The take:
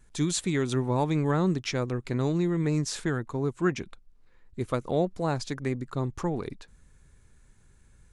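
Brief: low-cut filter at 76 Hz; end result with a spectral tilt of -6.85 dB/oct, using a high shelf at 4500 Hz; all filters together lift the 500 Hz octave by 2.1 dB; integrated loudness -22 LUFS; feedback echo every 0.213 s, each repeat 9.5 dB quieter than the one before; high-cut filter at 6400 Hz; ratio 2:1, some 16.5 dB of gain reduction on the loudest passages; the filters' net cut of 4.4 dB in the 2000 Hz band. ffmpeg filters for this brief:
-af "highpass=76,lowpass=6.4k,equalizer=f=500:t=o:g=3,equalizer=f=2k:t=o:g=-5,highshelf=f=4.5k:g=-4.5,acompressor=threshold=-52dB:ratio=2,aecho=1:1:213|426|639|852:0.335|0.111|0.0365|0.012,volume=21dB"

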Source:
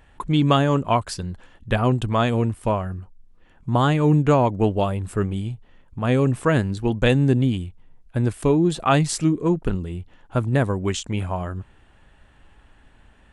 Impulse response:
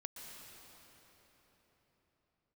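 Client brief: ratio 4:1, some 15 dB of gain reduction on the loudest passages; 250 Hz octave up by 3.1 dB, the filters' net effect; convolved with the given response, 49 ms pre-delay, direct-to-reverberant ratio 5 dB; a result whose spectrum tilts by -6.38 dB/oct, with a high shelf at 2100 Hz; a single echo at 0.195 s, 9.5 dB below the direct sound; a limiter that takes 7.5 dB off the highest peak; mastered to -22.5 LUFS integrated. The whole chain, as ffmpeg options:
-filter_complex "[0:a]equalizer=f=250:t=o:g=4,highshelf=f=2.1k:g=5,acompressor=threshold=-30dB:ratio=4,alimiter=limit=-23dB:level=0:latency=1,aecho=1:1:195:0.335,asplit=2[a][b];[1:a]atrim=start_sample=2205,adelay=49[c];[b][c]afir=irnorm=-1:irlink=0,volume=-2dB[d];[a][d]amix=inputs=2:normalize=0,volume=10dB"

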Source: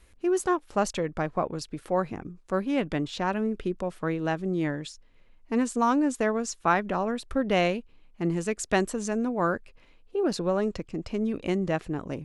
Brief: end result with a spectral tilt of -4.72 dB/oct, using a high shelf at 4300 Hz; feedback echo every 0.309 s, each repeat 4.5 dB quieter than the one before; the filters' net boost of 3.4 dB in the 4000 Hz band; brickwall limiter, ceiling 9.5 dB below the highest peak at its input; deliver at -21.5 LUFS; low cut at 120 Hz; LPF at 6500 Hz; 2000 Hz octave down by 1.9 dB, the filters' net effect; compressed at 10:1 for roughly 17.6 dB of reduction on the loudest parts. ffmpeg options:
-af "highpass=120,lowpass=6.5k,equalizer=f=2k:t=o:g=-4.5,equalizer=f=4k:t=o:g=3,highshelf=f=4.3k:g=7,acompressor=threshold=-38dB:ratio=10,alimiter=level_in=11.5dB:limit=-24dB:level=0:latency=1,volume=-11.5dB,aecho=1:1:309|618|927|1236|1545|1854|2163|2472|2781:0.596|0.357|0.214|0.129|0.0772|0.0463|0.0278|0.0167|0.01,volume=22dB"

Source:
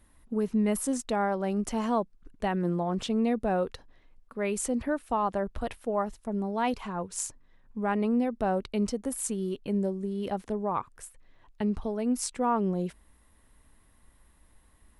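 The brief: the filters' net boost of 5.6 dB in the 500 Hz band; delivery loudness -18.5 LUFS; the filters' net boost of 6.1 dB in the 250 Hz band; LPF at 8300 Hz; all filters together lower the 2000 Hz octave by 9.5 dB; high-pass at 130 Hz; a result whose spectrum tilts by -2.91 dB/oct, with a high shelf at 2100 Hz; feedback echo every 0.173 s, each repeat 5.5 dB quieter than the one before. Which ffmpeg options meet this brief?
-af "highpass=130,lowpass=8.3k,equalizer=f=250:t=o:g=7,equalizer=f=500:t=o:g=6,equalizer=f=2k:t=o:g=-9,highshelf=f=2.1k:g=-8.5,aecho=1:1:173|346|519|692|865|1038|1211:0.531|0.281|0.149|0.079|0.0419|0.0222|0.0118,volume=5.5dB"

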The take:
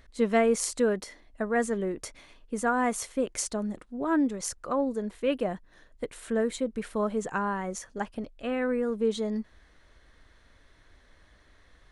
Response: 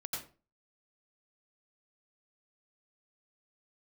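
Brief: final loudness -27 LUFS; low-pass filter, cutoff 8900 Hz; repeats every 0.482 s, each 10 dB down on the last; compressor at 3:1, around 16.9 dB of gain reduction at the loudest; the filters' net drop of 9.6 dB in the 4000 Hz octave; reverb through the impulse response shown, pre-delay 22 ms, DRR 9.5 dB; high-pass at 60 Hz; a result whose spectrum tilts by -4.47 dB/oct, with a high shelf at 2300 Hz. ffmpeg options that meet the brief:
-filter_complex "[0:a]highpass=60,lowpass=8.9k,highshelf=f=2.3k:g=-6.5,equalizer=f=4k:t=o:g=-6.5,acompressor=threshold=-44dB:ratio=3,aecho=1:1:482|964|1446|1928:0.316|0.101|0.0324|0.0104,asplit=2[a][b];[1:a]atrim=start_sample=2205,adelay=22[c];[b][c]afir=irnorm=-1:irlink=0,volume=-10.5dB[d];[a][d]amix=inputs=2:normalize=0,volume=16.5dB"

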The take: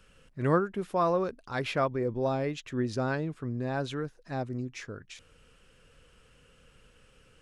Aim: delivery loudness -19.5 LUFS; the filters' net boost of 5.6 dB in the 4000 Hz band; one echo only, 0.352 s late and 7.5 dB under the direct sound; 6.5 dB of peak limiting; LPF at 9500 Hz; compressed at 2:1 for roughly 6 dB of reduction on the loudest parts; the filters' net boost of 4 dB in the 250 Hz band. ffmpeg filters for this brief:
-af "lowpass=9.5k,equalizer=f=250:t=o:g=5,equalizer=f=4k:t=o:g=7,acompressor=threshold=-29dB:ratio=2,alimiter=limit=-24dB:level=0:latency=1,aecho=1:1:352:0.422,volume=14.5dB"

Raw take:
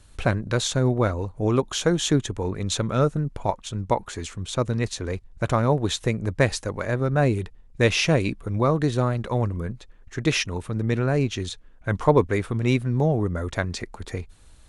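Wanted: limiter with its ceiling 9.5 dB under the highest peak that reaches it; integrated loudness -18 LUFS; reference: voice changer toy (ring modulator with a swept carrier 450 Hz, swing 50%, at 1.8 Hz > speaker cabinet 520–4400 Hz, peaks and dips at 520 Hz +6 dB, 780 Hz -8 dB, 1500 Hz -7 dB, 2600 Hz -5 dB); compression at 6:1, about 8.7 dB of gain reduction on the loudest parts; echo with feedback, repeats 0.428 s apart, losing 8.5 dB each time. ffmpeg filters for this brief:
-af "acompressor=threshold=-22dB:ratio=6,alimiter=limit=-21dB:level=0:latency=1,aecho=1:1:428|856|1284|1712:0.376|0.143|0.0543|0.0206,aeval=exprs='val(0)*sin(2*PI*450*n/s+450*0.5/1.8*sin(2*PI*1.8*n/s))':c=same,highpass=520,equalizer=f=520:t=q:w=4:g=6,equalizer=f=780:t=q:w=4:g=-8,equalizer=f=1.5k:t=q:w=4:g=-7,equalizer=f=2.6k:t=q:w=4:g=-5,lowpass=f=4.4k:w=0.5412,lowpass=f=4.4k:w=1.3066,volume=19.5dB"

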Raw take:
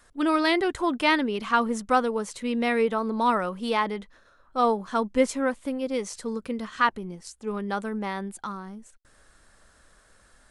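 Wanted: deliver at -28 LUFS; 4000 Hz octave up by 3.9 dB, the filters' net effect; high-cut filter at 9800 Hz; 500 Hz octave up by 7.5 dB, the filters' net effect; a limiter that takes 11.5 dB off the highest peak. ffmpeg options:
-af "lowpass=9.8k,equalizer=f=500:t=o:g=8.5,equalizer=f=4k:t=o:g=5,volume=-2.5dB,alimiter=limit=-17dB:level=0:latency=1"

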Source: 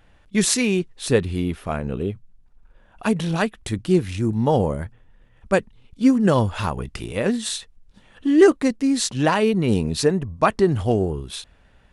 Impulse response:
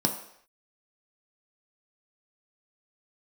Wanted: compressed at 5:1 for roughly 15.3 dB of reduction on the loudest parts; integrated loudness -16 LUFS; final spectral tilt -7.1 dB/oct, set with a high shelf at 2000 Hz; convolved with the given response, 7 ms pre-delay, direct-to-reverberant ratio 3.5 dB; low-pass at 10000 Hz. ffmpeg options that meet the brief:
-filter_complex "[0:a]lowpass=10k,highshelf=f=2k:g=-6.5,acompressor=threshold=-26dB:ratio=5,asplit=2[a][b];[1:a]atrim=start_sample=2205,adelay=7[c];[b][c]afir=irnorm=-1:irlink=0,volume=-12.5dB[d];[a][d]amix=inputs=2:normalize=0,volume=9.5dB"

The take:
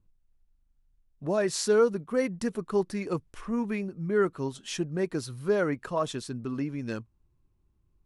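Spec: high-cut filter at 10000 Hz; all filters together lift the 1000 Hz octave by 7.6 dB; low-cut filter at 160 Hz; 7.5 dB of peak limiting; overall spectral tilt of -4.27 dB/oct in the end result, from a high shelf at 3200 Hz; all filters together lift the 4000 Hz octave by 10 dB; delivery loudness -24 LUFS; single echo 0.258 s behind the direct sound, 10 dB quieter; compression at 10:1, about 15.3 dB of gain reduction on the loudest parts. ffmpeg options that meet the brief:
-af "highpass=160,lowpass=10k,equalizer=f=1k:t=o:g=8.5,highshelf=f=3.2k:g=4,equalizer=f=4k:t=o:g=9,acompressor=threshold=-32dB:ratio=10,alimiter=level_in=4dB:limit=-24dB:level=0:latency=1,volume=-4dB,aecho=1:1:258:0.316,volume=14dB"

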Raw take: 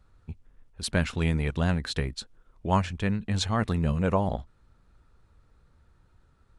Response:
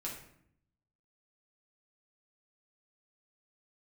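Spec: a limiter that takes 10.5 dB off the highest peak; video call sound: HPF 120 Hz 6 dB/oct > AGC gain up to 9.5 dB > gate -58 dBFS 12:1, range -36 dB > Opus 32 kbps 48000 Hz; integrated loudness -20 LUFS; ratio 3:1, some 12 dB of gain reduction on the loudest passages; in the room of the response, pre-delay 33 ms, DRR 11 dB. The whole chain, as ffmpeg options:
-filter_complex "[0:a]acompressor=threshold=-36dB:ratio=3,alimiter=level_in=7dB:limit=-24dB:level=0:latency=1,volume=-7dB,asplit=2[a][b];[1:a]atrim=start_sample=2205,adelay=33[c];[b][c]afir=irnorm=-1:irlink=0,volume=-11dB[d];[a][d]amix=inputs=2:normalize=0,highpass=f=120:p=1,dynaudnorm=m=9.5dB,agate=range=-36dB:threshold=-58dB:ratio=12,volume=24dB" -ar 48000 -c:a libopus -b:a 32k

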